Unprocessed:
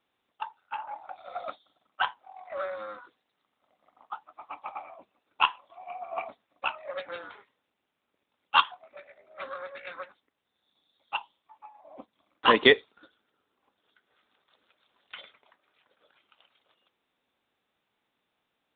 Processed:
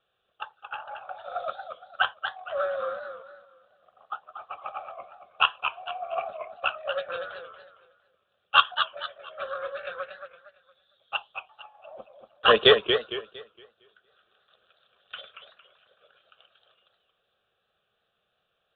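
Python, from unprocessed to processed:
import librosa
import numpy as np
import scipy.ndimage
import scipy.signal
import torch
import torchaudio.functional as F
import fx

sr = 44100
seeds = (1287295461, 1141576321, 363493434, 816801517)

y = scipy.signal.sosfilt(scipy.signal.butter(2, 4000.0, 'lowpass', fs=sr, output='sos'), x)
y = fx.fixed_phaser(y, sr, hz=1400.0, stages=8)
y = fx.echo_warbled(y, sr, ms=230, feedback_pct=33, rate_hz=2.8, cents=157, wet_db=-7.5)
y = y * 10.0 ** (6.0 / 20.0)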